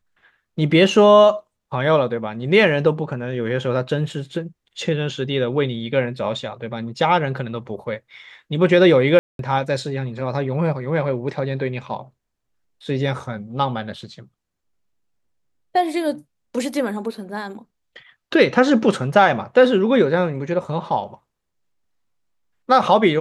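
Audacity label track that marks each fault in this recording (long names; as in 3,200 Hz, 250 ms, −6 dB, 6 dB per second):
9.190000	9.390000	drop-out 202 ms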